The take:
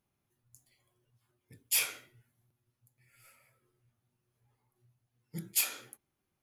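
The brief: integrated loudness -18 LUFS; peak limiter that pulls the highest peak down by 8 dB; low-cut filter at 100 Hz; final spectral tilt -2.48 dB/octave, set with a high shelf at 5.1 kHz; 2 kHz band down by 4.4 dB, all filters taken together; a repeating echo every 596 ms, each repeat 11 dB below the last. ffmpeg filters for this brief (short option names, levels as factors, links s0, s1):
-af "highpass=100,equalizer=f=2000:t=o:g=-4,highshelf=f=5100:g=-8,alimiter=level_in=2.51:limit=0.0631:level=0:latency=1,volume=0.398,aecho=1:1:596|1192|1788:0.282|0.0789|0.0221,volume=23.7"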